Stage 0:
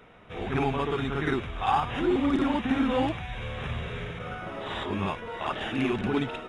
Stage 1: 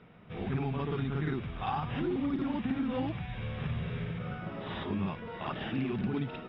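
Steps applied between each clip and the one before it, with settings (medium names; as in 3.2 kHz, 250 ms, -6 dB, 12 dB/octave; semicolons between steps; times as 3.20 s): elliptic low-pass 5.1 kHz, stop band 40 dB; peaking EQ 160 Hz +12.5 dB 1.5 oct; compression, threshold -22 dBFS, peak gain reduction 7 dB; trim -6.5 dB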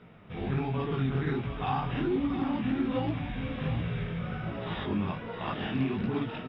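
chorus 1.3 Hz, delay 16.5 ms, depth 7 ms; on a send: delay 705 ms -10 dB; on the sum: trim +5.5 dB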